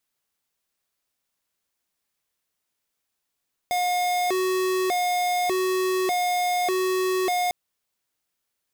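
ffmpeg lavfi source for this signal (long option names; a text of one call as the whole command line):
ffmpeg -f lavfi -i "aevalsrc='0.0668*(2*lt(mod((544.5*t+172.5/0.84*(0.5-abs(mod(0.84*t,1)-0.5))),1),0.5)-1)':duration=3.8:sample_rate=44100" out.wav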